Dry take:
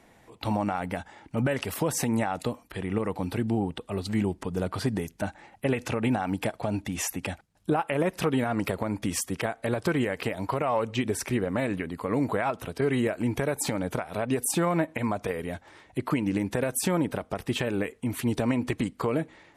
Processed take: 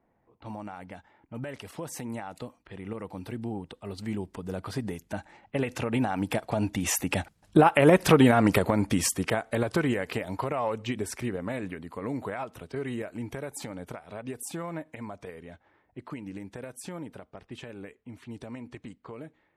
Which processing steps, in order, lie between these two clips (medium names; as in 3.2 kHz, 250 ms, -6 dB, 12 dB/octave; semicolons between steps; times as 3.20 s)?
Doppler pass-by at 7.99 s, 6 m/s, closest 4.6 m; level-controlled noise filter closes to 1.2 kHz, open at -44.5 dBFS; trim +8 dB